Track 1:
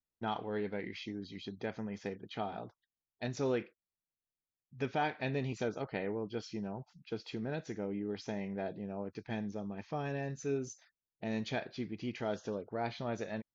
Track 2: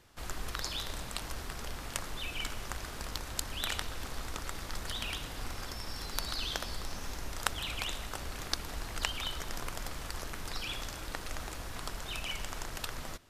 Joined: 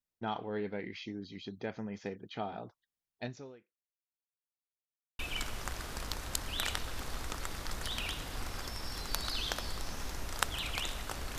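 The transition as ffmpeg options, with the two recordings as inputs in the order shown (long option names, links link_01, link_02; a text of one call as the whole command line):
ffmpeg -i cue0.wav -i cue1.wav -filter_complex "[0:a]apad=whole_dur=11.38,atrim=end=11.38,asplit=2[link_01][link_02];[link_01]atrim=end=4.7,asetpts=PTS-STARTPTS,afade=type=out:start_time=3.23:duration=1.47:curve=exp[link_03];[link_02]atrim=start=4.7:end=5.19,asetpts=PTS-STARTPTS,volume=0[link_04];[1:a]atrim=start=2.23:end=8.42,asetpts=PTS-STARTPTS,afade=type=in:duration=0.004:curve=hsin[link_05];[link_03][link_04][link_05]concat=n=3:v=0:a=1" out.wav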